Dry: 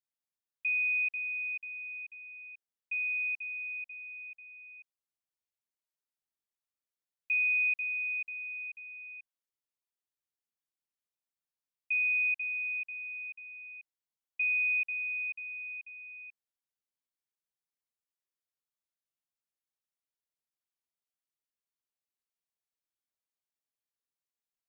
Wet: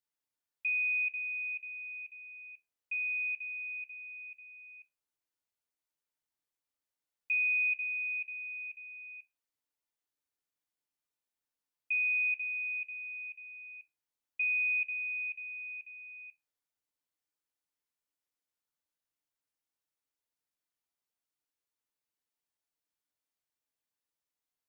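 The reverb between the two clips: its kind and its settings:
feedback delay network reverb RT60 0.4 s, low-frequency decay 0.7×, high-frequency decay 0.4×, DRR 3 dB

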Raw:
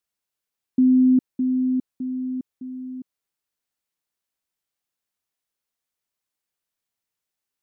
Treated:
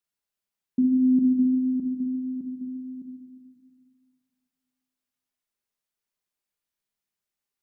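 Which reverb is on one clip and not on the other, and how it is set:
rectangular room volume 1,400 cubic metres, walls mixed, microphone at 1.3 metres
level −4.5 dB

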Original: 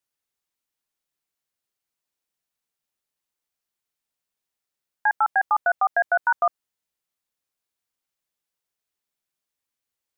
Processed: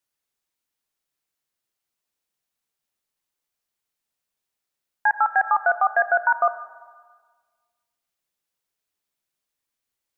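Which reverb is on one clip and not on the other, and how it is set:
comb and all-pass reverb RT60 1.5 s, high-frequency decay 0.7×, pre-delay 0 ms, DRR 12 dB
level +1.5 dB

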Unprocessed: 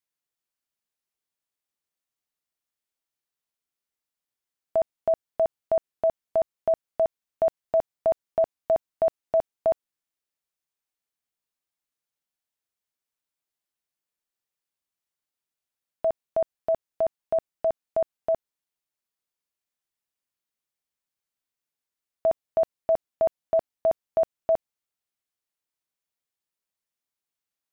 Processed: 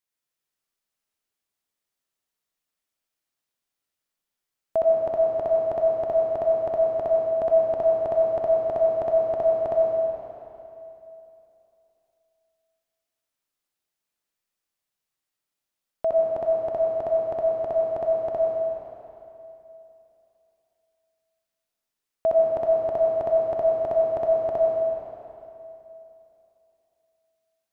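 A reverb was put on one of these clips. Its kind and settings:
comb and all-pass reverb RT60 3 s, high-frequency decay 0.9×, pre-delay 40 ms, DRR −2.5 dB

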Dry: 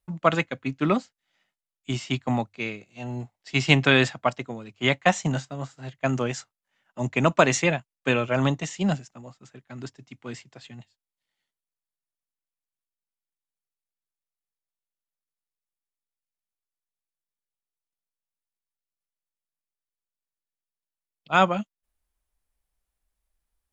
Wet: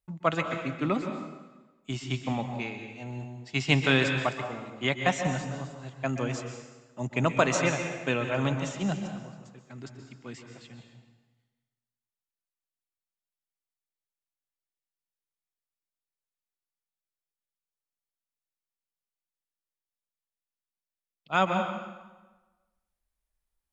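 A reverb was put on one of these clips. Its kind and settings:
dense smooth reverb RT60 1.2 s, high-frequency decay 0.85×, pre-delay 115 ms, DRR 5 dB
level −5.5 dB

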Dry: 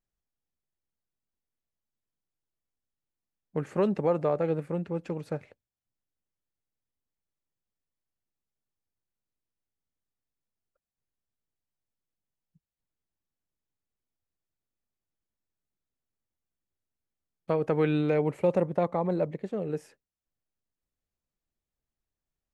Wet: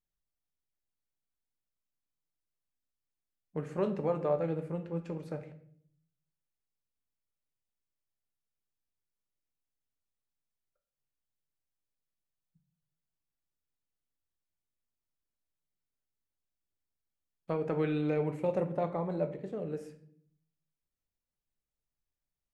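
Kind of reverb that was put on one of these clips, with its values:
rectangular room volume 89 cubic metres, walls mixed, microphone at 0.4 metres
level −6.5 dB

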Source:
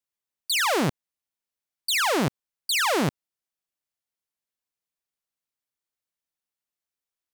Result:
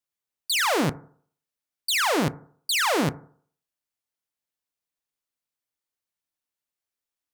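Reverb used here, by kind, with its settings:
feedback delay network reverb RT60 0.53 s, low-frequency decay 0.9×, high-frequency decay 0.25×, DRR 12.5 dB

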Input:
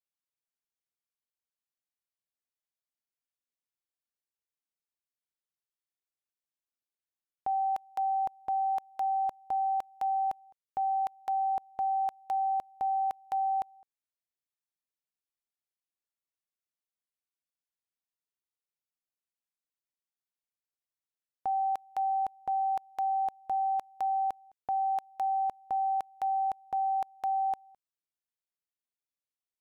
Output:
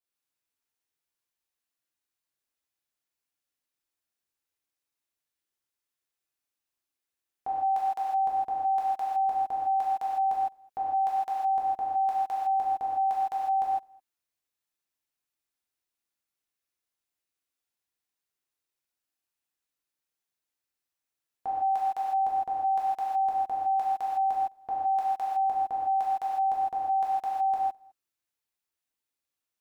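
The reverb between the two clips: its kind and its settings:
reverb whose tail is shaped and stops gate 180 ms flat, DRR −7.5 dB
level −2 dB

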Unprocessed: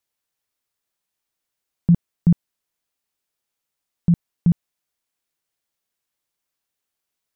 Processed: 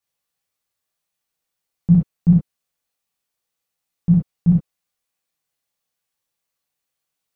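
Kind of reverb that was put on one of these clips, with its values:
reverb whose tail is shaped and stops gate 90 ms flat, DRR −5 dB
level −5 dB

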